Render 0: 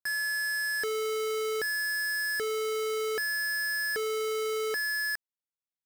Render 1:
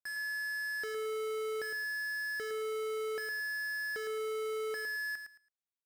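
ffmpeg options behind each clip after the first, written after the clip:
-af "highshelf=f=9.3k:g=-5.5,aecho=1:1:110|220|330:0.422|0.0886|0.0186,volume=-8.5dB"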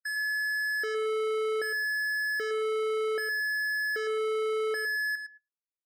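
-af "afftdn=nr=34:nf=-48,volume=7dB"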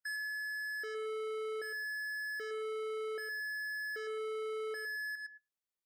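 -af "alimiter=level_in=13.5dB:limit=-24dB:level=0:latency=1:release=173,volume=-13.5dB,aeval=exprs='0.0133*(cos(1*acos(clip(val(0)/0.0133,-1,1)))-cos(1*PI/2))+0.000299*(cos(3*acos(clip(val(0)/0.0133,-1,1)))-cos(3*PI/2))':c=same"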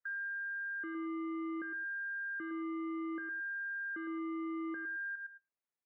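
-af "highpass=f=230:t=q:w=0.5412,highpass=f=230:t=q:w=1.307,lowpass=f=2.4k:t=q:w=0.5176,lowpass=f=2.4k:t=q:w=0.7071,lowpass=f=2.4k:t=q:w=1.932,afreqshift=-110"

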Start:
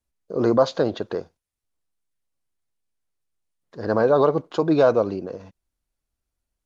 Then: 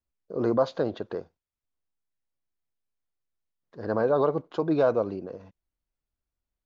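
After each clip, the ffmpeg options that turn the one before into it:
-af "aemphasis=mode=reproduction:type=50fm,volume=-6dB"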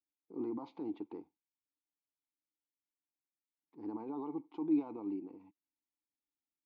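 -filter_complex "[0:a]alimiter=limit=-20.5dB:level=0:latency=1:release=46,asplit=3[a][b][c];[a]bandpass=f=300:t=q:w=8,volume=0dB[d];[b]bandpass=f=870:t=q:w=8,volume=-6dB[e];[c]bandpass=f=2.24k:t=q:w=8,volume=-9dB[f];[d][e][f]amix=inputs=3:normalize=0,volume=1.5dB"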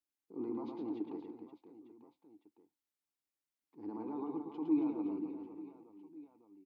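-af "aecho=1:1:110|275|522.5|893.8|1451:0.631|0.398|0.251|0.158|0.1,volume=-1.5dB"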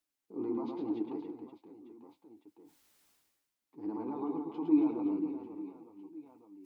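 -af "areverse,acompressor=mode=upward:threshold=-56dB:ratio=2.5,areverse,flanger=delay=6:depth=6.4:regen=-31:speed=0.77:shape=triangular,volume=8dB"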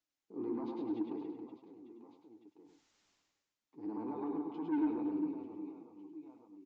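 -af "aresample=16000,asoftclip=type=tanh:threshold=-27dB,aresample=44100,aecho=1:1:100:0.447,volume=-2.5dB"

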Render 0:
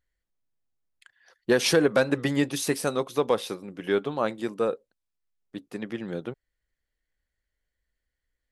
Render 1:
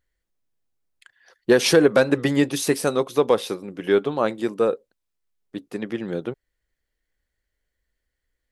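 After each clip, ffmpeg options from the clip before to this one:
-af "equalizer=f=390:w=1.5:g=3,volume=3.5dB"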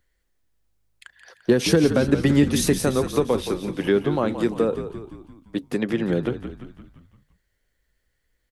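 -filter_complex "[0:a]acrossover=split=260[a][b];[b]acompressor=threshold=-28dB:ratio=5[c];[a][c]amix=inputs=2:normalize=0,asplit=2[d][e];[e]asplit=6[f][g][h][i][j][k];[f]adelay=172,afreqshift=-52,volume=-10dB[l];[g]adelay=344,afreqshift=-104,volume=-15.4dB[m];[h]adelay=516,afreqshift=-156,volume=-20.7dB[n];[i]adelay=688,afreqshift=-208,volume=-26.1dB[o];[j]adelay=860,afreqshift=-260,volume=-31.4dB[p];[k]adelay=1032,afreqshift=-312,volume=-36.8dB[q];[l][m][n][o][p][q]amix=inputs=6:normalize=0[r];[d][r]amix=inputs=2:normalize=0,volume=6dB"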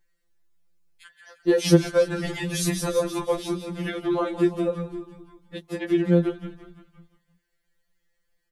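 -af "afftfilt=real='re*2.83*eq(mod(b,8),0)':imag='im*2.83*eq(mod(b,8),0)':win_size=2048:overlap=0.75"

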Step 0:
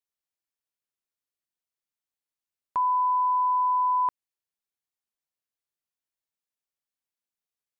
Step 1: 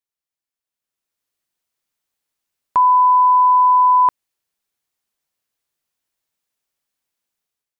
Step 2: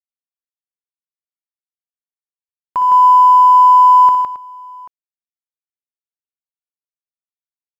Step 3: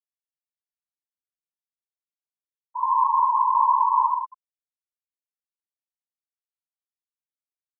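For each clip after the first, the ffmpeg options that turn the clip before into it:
-af "dynaudnorm=f=670:g=3:m=11.5dB"
-af "aeval=exprs='sgn(val(0))*max(abs(val(0))-0.00841,0)':c=same,aecho=1:1:60|124|160|270|787:0.335|0.188|0.631|0.188|0.112,volume=-2.5dB"
-af "afftfilt=real='hypot(re,im)*cos(2*PI*random(0))':imag='hypot(re,im)*sin(2*PI*random(1))':win_size=512:overlap=0.75,aeval=exprs='val(0)+0.0141*sin(2*PI*1200*n/s)':c=same,afftfilt=real='re*gte(hypot(re,im),0.447)':imag='im*gte(hypot(re,im),0.447)':win_size=1024:overlap=0.75,volume=-6dB"

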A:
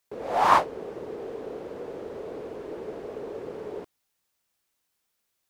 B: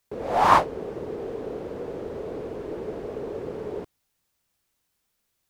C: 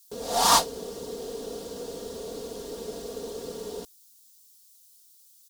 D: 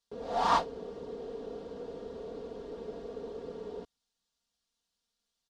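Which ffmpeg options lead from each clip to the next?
-af "lowshelf=f=200:g=9.5,volume=1.5dB"
-af "aecho=1:1:4.3:0.67,aexciter=amount=10.9:drive=5.5:freq=3.4k,volume=-6dB"
-af "lowpass=2.2k,volume=-4.5dB"

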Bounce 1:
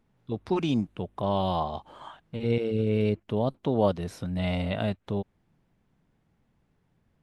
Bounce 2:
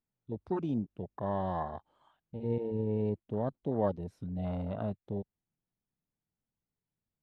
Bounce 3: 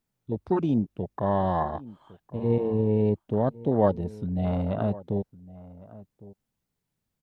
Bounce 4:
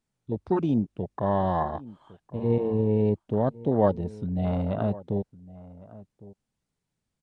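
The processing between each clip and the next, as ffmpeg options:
-af "afwtdn=0.0251,volume=-6.5dB"
-filter_complex "[0:a]asplit=2[a][b];[b]adelay=1108,volume=-19dB,highshelf=f=4k:g=-24.9[c];[a][c]amix=inputs=2:normalize=0,volume=8.5dB"
-af "aresample=22050,aresample=44100"

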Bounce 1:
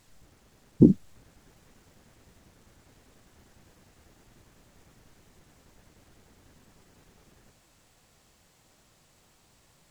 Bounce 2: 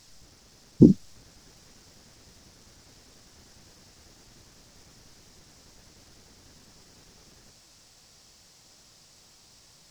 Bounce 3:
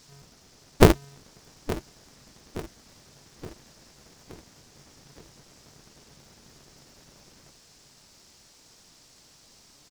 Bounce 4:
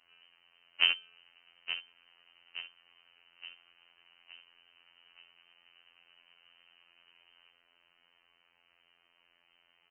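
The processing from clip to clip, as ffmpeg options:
-af "equalizer=f=5.3k:t=o:w=0.88:g=13,volume=2dB"
-af "aecho=1:1:871|1742|2613|3484|4355:0.158|0.084|0.0445|0.0236|0.0125,aeval=exprs='val(0)*sgn(sin(2*PI*140*n/s))':c=same"
-af "alimiter=limit=-8dB:level=0:latency=1:release=108,lowpass=f=2.6k:t=q:w=0.5098,lowpass=f=2.6k:t=q:w=0.6013,lowpass=f=2.6k:t=q:w=0.9,lowpass=f=2.6k:t=q:w=2.563,afreqshift=-3100,afftfilt=real='hypot(re,im)*cos(PI*b)':imag='0':win_size=2048:overlap=0.75,volume=-4.5dB"

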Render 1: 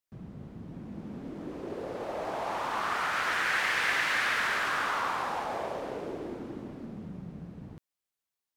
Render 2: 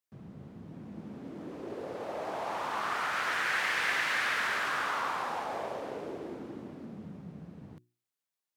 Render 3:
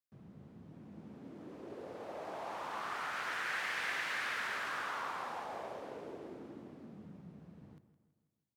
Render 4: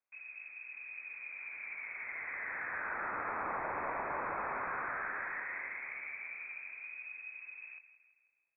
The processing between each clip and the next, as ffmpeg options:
-af "highpass=89,bandreject=f=60:t=h:w=6,bandreject=f=120:t=h:w=6,bandreject=f=180:t=h:w=6,bandreject=f=240:t=h:w=6,bandreject=f=300:t=h:w=6,bandreject=f=360:t=h:w=6,volume=-2dB"
-filter_complex "[0:a]asplit=2[a][b];[b]adelay=163,lowpass=f=4.2k:p=1,volume=-13.5dB,asplit=2[c][d];[d]adelay=163,lowpass=f=4.2k:p=1,volume=0.51,asplit=2[e][f];[f]adelay=163,lowpass=f=4.2k:p=1,volume=0.51,asplit=2[g][h];[h]adelay=163,lowpass=f=4.2k:p=1,volume=0.51,asplit=2[i][j];[j]adelay=163,lowpass=f=4.2k:p=1,volume=0.51[k];[a][c][e][g][i][k]amix=inputs=6:normalize=0,volume=-7.5dB"
-filter_complex "[0:a]lowpass=f=2.3k:t=q:w=0.5098,lowpass=f=2.3k:t=q:w=0.6013,lowpass=f=2.3k:t=q:w=0.9,lowpass=f=2.3k:t=q:w=2.563,afreqshift=-2700,acrossover=split=610|1400[a][b][c];[a]acompressor=threshold=-49dB:ratio=4[d];[b]acompressor=threshold=-47dB:ratio=4[e];[c]acompressor=threshold=-49dB:ratio=4[f];[d][e][f]amix=inputs=3:normalize=0,volume=6dB"

